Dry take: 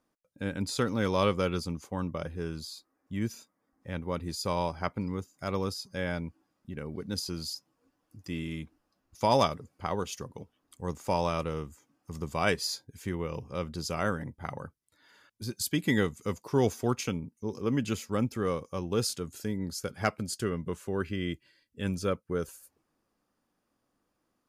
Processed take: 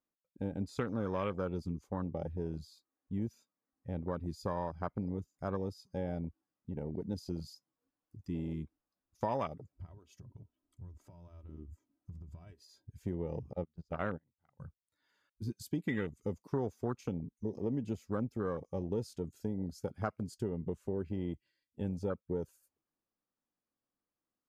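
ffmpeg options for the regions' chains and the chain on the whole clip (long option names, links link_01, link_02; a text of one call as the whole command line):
ffmpeg -i in.wav -filter_complex "[0:a]asettb=1/sr,asplit=3[link_01][link_02][link_03];[link_01]atrim=end=9.724[link_04];[link_02]atrim=start=9.72:end=12.91,asetpts=PTS-STARTPTS,afade=type=in:duration=0.004:curve=qsin,afade=type=out:start_time=3.186:duration=0.004:curve=qsin,tiltshelf=frequency=740:gain=6.5,aecho=1:1:3.1:0.65,atrim=end_sample=140679,acompressor=threshold=-40dB:ratio=12:attack=3.2:release=140:knee=1:detection=peak[link_05];[link_03]atrim=start=12.906[link_06];[link_04][link_05]acrossfade=duration=0.004:curve1=hsin:curve2=qsin[link_07];[link_07][link_06]acrossfade=duration=0.004:curve1=qsin:curve2=hsin,asettb=1/sr,asplit=3[link_08][link_09][link_10];[link_08]atrim=end=13.534[link_11];[link_09]atrim=start=13.53:end=14.6,asetpts=PTS-STARTPTS,afade=type=in:duration=0.004:curve=qsin,afade=type=out:start_time=1.066:duration=0.004:curve=qsin,lowpass=frequency=2500:poles=1,agate=range=-23dB:threshold=-34dB:ratio=16:release=100:detection=peak[link_12];[link_10]atrim=start=14.596[link_13];[link_11][link_12]acrossfade=duration=0.004:curve1=hsin:curve2=qsin[link_14];[link_14][link_13]acrossfade=duration=0.004:curve1=qsin:curve2=hsin,afwtdn=0.0224,equalizer=frequency=10000:width_type=o:width=0.25:gain=-4,acompressor=threshold=-32dB:ratio=4" out.wav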